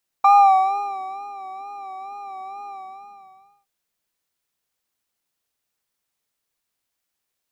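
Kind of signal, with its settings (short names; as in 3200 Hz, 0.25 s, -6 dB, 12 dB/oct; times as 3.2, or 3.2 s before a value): synth patch with vibrato G5, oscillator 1 square, oscillator 2 sine, interval +7 st, detune 10 cents, oscillator 2 level -1 dB, sub -30 dB, noise -19 dB, filter bandpass, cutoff 130 Hz, Q 2.2, filter envelope 3 oct, filter decay 0.74 s, filter sustain 40%, attack 6.8 ms, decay 1.08 s, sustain -10 dB, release 0.96 s, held 2.46 s, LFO 2.2 Hz, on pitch 60 cents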